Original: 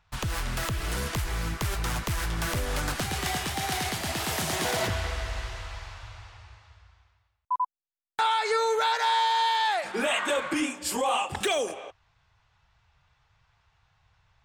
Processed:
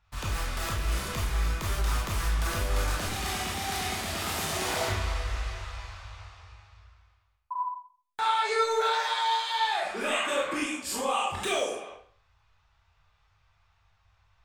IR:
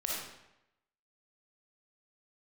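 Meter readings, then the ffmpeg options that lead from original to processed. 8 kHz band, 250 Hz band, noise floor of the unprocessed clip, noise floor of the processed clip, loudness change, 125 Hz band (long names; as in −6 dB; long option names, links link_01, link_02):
−1.5 dB, −3.5 dB, −75 dBFS, −69 dBFS, −1.5 dB, −0.5 dB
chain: -filter_complex "[1:a]atrim=start_sample=2205,asetrate=83790,aresample=44100[link_01];[0:a][link_01]afir=irnorm=-1:irlink=0"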